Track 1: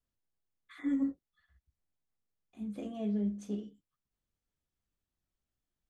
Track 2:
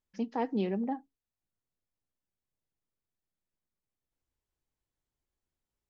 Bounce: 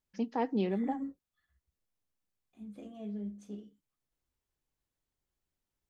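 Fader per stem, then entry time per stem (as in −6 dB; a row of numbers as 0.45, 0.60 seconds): −7.0, 0.0 decibels; 0.00, 0.00 seconds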